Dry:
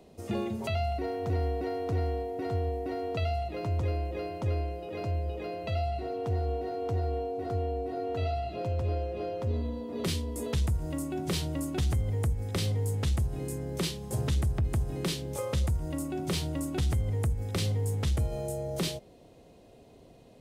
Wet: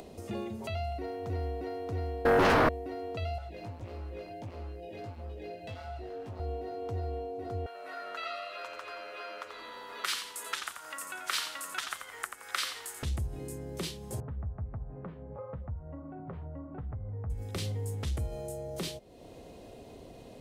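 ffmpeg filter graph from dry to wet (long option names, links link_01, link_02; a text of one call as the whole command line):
ffmpeg -i in.wav -filter_complex "[0:a]asettb=1/sr,asplit=3[link_01][link_02][link_03];[link_01]atrim=end=2.254[link_04];[link_02]atrim=start=2.25:end=2.69,asetpts=PTS-STARTPTS,afade=type=in:duration=0.004:curve=qsin,afade=type=out:start_time=0.436:duration=0.004:curve=qsin,acontrast=55,aeval=exprs='0.178*sin(PI/2*4.47*val(0)/0.178)':channel_layout=same[link_05];[link_03]atrim=start=2.686[link_06];[link_04][link_05]acrossfade=duration=0.004:curve1=hsin:curve2=qsin[link_07];[link_07][link_06]acrossfade=duration=0.004:curve1=qsin:curve2=hsin,asettb=1/sr,asplit=3[link_08][link_09][link_10];[link_08]atrim=end=3.384[link_11];[link_09]atrim=start=3.38:end=6.4,asetpts=PTS-STARTPTS,afade=type=in:duration=0.004:curve=qsin,afade=type=out:start_time=3.016:duration=0.004:curve=qsin,asuperstop=centerf=1200:order=20:qfactor=2.1,volume=30.5dB,asoftclip=hard,volume=-30.5dB,flanger=delay=16.5:depth=2.1:speed=1.5[link_12];[link_10]atrim=start=6.396[link_13];[link_11][link_12]acrossfade=duration=0.004:curve1=hsin:curve2=qsin[link_14];[link_14][link_13]acrossfade=duration=0.004:curve1=qsin:curve2=hsin,asettb=1/sr,asplit=3[link_15][link_16][link_17];[link_15]atrim=end=7.664[link_18];[link_16]atrim=start=7.66:end=13.03,asetpts=PTS-STARTPTS,afade=type=in:duration=0.004:curve=qsin,afade=type=out:start_time=5.366:duration=0.004:curve=qsin,acontrast=52,highpass=frequency=1400:width_type=q:width=3.5,asplit=5[link_19][link_20][link_21][link_22][link_23];[link_20]adelay=86,afreqshift=-96,volume=-7.5dB[link_24];[link_21]adelay=172,afreqshift=-192,volume=-16.6dB[link_25];[link_22]adelay=258,afreqshift=-288,volume=-25.7dB[link_26];[link_23]adelay=344,afreqshift=-384,volume=-34.9dB[link_27];[link_19][link_24][link_25][link_26][link_27]amix=inputs=5:normalize=0,atrim=end_sample=236817[link_28];[link_17]atrim=start=13.026[link_29];[link_18][link_28]acrossfade=duration=0.004:curve1=hsin:curve2=qsin[link_30];[link_30][link_29]acrossfade=duration=0.004:curve1=qsin:curve2=hsin,asettb=1/sr,asplit=3[link_31][link_32][link_33];[link_31]atrim=end=14.204[link_34];[link_32]atrim=start=14.2:end=17.3,asetpts=PTS-STARTPTS,afade=type=in:duration=0.004:curve=qsin,afade=type=out:start_time=3.096:duration=0.004:curve=qsin,lowpass=frequency=1400:width=0.5412,lowpass=frequency=1400:width=1.3066,equalizer=frequency=340:width=3.8:gain=-12.5,flanger=delay=6.2:depth=5.2:regen=-49:speed=1.5:shape=sinusoidal[link_35];[link_33]atrim=start=17.296[link_36];[link_34][link_35]acrossfade=duration=0.004:curve1=hsin:curve2=qsin[link_37];[link_37][link_36]acrossfade=duration=0.004:curve1=qsin:curve2=hsin,equalizer=frequency=150:width_type=o:width=0.74:gain=-3.5,acompressor=mode=upward:threshold=-33dB:ratio=2.5,volume=-4.5dB" out.wav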